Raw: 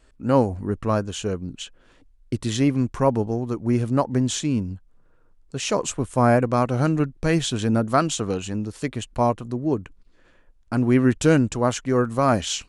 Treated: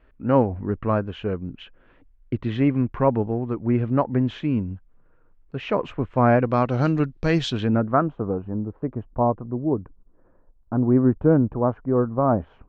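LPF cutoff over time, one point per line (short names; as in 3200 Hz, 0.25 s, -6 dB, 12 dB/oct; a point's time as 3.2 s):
LPF 24 dB/oct
6.12 s 2600 Hz
6.84 s 5000 Hz
7.49 s 5000 Hz
7.73 s 2500 Hz
8.14 s 1100 Hz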